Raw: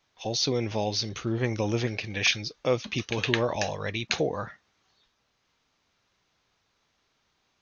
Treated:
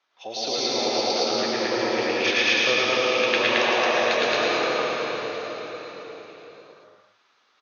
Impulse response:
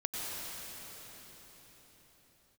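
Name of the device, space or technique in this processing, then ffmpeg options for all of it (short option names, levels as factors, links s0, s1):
station announcement: -filter_complex "[0:a]highpass=430,lowpass=4900,equalizer=f=1300:t=o:w=0.39:g=5.5,aecho=1:1:110.8|221.6:0.794|1[s0];[1:a]atrim=start_sample=2205[s1];[s0][s1]afir=irnorm=-1:irlink=0"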